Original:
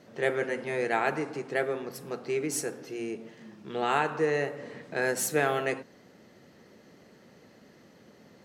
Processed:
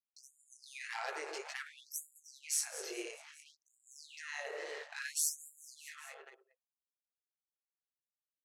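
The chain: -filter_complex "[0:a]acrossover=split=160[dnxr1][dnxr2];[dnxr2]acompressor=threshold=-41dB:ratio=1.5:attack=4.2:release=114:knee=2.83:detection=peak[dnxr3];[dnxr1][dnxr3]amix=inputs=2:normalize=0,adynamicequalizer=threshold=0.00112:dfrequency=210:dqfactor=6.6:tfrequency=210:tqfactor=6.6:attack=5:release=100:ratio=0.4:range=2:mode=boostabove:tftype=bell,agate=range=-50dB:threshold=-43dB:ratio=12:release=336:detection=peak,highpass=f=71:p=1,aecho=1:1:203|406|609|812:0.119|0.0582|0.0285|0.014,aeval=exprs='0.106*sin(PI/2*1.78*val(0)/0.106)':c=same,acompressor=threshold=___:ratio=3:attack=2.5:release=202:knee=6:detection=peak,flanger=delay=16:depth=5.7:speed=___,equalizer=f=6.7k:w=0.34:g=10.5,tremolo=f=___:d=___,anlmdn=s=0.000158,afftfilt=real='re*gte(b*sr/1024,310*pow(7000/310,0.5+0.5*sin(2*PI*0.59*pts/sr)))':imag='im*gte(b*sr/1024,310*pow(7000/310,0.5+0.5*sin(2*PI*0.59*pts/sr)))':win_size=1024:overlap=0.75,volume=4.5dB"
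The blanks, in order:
-42dB, 1.9, 150, 0.519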